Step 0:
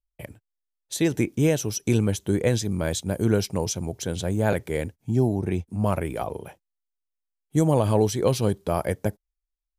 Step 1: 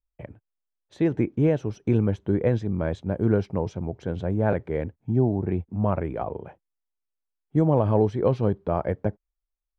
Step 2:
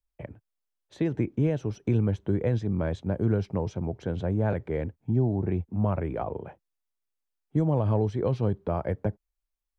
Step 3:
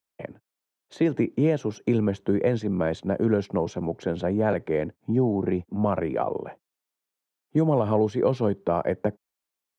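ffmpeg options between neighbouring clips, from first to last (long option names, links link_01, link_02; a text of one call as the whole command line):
ffmpeg -i in.wav -af "lowpass=1500" out.wav
ffmpeg -i in.wav -filter_complex "[0:a]acrossover=split=150|3000[link_01][link_02][link_03];[link_02]acompressor=threshold=-27dB:ratio=2.5[link_04];[link_01][link_04][link_03]amix=inputs=3:normalize=0" out.wav
ffmpeg -i in.wav -af "highpass=200,volume=6dB" out.wav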